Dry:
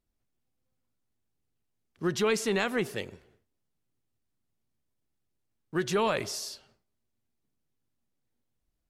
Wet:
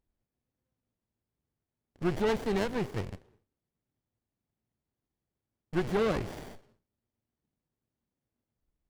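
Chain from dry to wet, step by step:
loose part that buzzes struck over −44 dBFS, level −28 dBFS
windowed peak hold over 33 samples

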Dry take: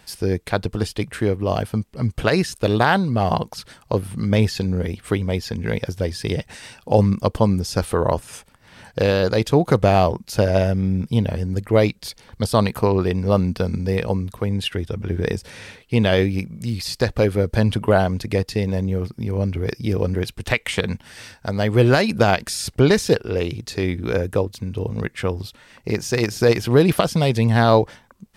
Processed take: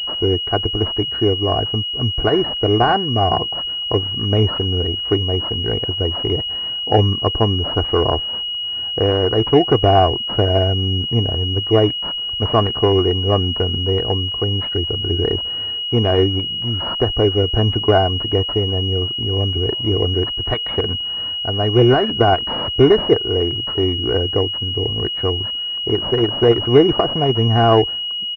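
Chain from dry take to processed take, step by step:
comb filter 2.7 ms, depth 69%
switching amplifier with a slow clock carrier 2,900 Hz
level +1.5 dB

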